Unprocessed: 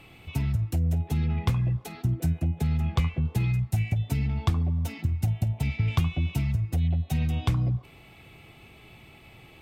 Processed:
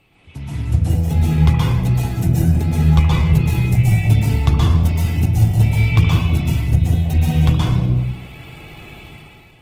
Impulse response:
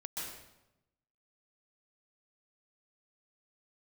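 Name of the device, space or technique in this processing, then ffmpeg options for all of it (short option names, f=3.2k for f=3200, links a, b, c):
speakerphone in a meeting room: -filter_complex "[1:a]atrim=start_sample=2205[a];[0:a][a]afir=irnorm=-1:irlink=0,dynaudnorm=f=180:g=7:m=13.5dB" -ar 48000 -c:a libopus -b:a 16k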